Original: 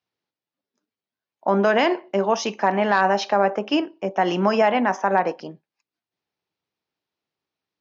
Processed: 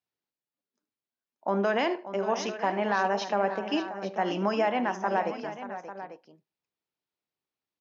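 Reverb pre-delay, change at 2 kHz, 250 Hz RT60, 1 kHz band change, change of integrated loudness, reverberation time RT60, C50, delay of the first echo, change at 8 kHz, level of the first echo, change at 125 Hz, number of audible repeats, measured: no reverb, -7.5 dB, no reverb, -7.5 dB, -8.0 dB, no reverb, no reverb, 76 ms, no reading, -16.0 dB, -7.5 dB, 3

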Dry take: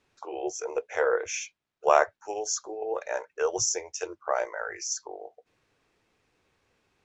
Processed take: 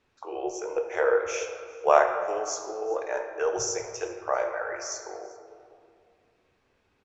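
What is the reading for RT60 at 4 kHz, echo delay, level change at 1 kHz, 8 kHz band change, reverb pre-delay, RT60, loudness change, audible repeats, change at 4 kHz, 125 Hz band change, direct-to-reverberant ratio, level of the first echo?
1.2 s, 391 ms, +1.5 dB, no reading, 14 ms, 2.2 s, +1.0 dB, 1, -3.0 dB, +2.0 dB, 4.0 dB, -23.0 dB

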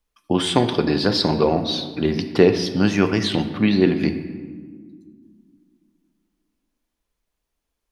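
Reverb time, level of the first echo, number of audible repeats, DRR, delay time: 1.7 s, no echo, no echo, 7.5 dB, no echo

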